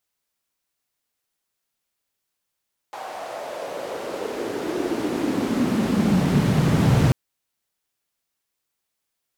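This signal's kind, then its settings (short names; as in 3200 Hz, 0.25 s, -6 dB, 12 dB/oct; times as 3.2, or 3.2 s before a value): swept filtered noise white, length 4.19 s bandpass, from 780 Hz, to 120 Hz, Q 3.8, exponential, gain ramp +28 dB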